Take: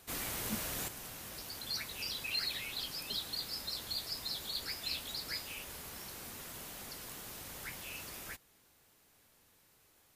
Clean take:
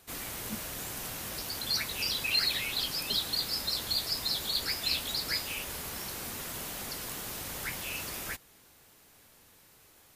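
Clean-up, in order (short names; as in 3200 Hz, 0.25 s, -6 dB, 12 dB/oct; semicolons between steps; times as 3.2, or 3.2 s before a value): clip repair -27 dBFS; gain correction +8 dB, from 0.88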